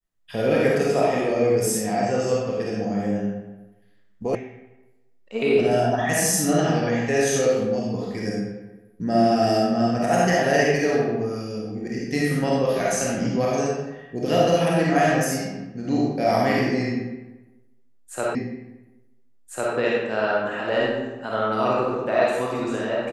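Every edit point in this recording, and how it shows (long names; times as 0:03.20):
0:04.35: cut off before it has died away
0:18.35: the same again, the last 1.4 s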